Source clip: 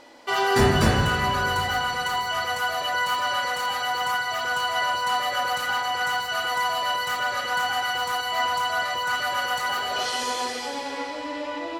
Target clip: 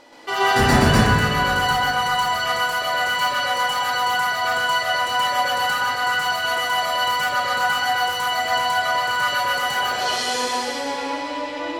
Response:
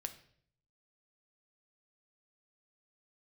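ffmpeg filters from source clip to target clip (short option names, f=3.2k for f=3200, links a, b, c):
-filter_complex "[0:a]asplit=2[a][b];[1:a]atrim=start_sample=2205,adelay=126[c];[b][c]afir=irnorm=-1:irlink=0,volume=5.5dB[d];[a][d]amix=inputs=2:normalize=0"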